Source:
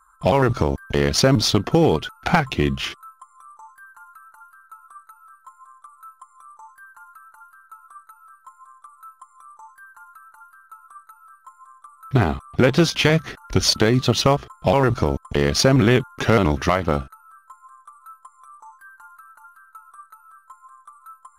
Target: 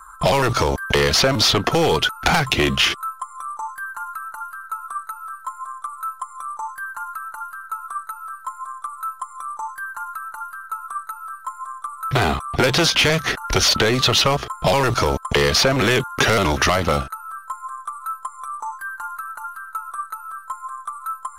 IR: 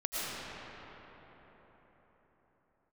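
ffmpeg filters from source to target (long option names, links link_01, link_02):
-filter_complex "[0:a]apsyclip=18.5dB,acrossover=split=450|3500[link_01][link_02][link_03];[link_01]acompressor=threshold=-20dB:ratio=4[link_04];[link_02]acompressor=threshold=-14dB:ratio=4[link_05];[link_03]acompressor=threshold=-18dB:ratio=4[link_06];[link_04][link_05][link_06]amix=inputs=3:normalize=0,volume=-3.5dB"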